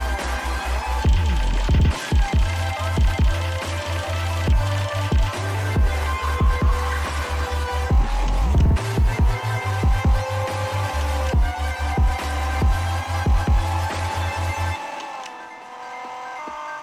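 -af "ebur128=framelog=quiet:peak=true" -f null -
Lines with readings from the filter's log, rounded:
Integrated loudness:
  I:         -22.6 LUFS
  Threshold: -32.8 LUFS
Loudness range:
  LRA:         2.3 LU
  Threshold: -42.5 LUFS
  LRA low:   -23.8 LUFS
  LRA high:  -21.5 LUFS
True peak:
  Peak:       -8.9 dBFS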